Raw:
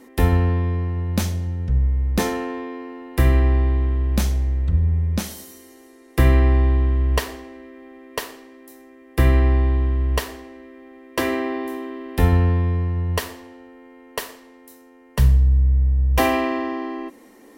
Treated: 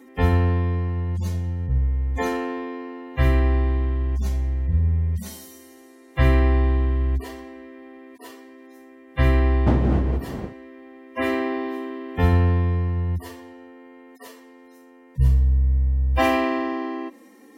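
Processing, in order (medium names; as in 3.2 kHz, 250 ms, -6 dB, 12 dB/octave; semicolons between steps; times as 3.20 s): harmonic-percussive separation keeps harmonic; 9.66–10.52 s: wind noise 290 Hz -23 dBFS; high-pass 64 Hz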